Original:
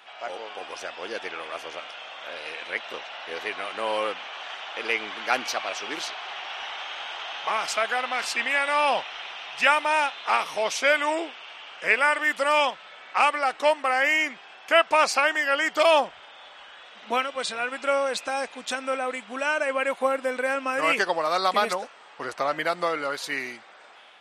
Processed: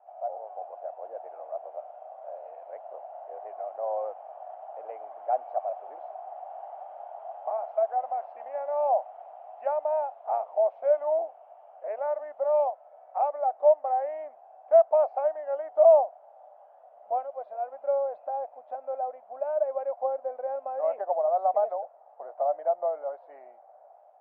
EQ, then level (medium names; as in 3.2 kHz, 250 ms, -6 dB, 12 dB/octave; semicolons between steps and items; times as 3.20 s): Butterworth band-pass 670 Hz, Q 3.4; distance through air 210 m; +5.0 dB